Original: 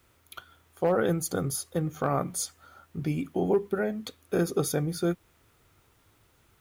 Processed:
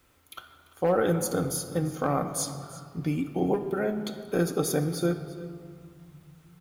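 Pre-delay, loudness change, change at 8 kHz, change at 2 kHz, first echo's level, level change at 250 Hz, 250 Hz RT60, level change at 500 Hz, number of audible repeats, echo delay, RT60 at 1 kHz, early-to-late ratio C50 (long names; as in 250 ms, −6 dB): 4 ms, +0.5 dB, +1.0 dB, +0.5 dB, −18.0 dB, +1.5 dB, 3.2 s, +0.5 dB, 1, 342 ms, 2.4 s, 9.5 dB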